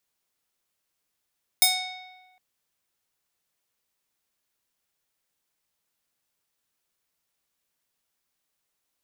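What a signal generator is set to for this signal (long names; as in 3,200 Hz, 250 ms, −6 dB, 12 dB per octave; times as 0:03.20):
Karplus-Strong string F#5, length 0.76 s, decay 1.32 s, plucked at 0.48, bright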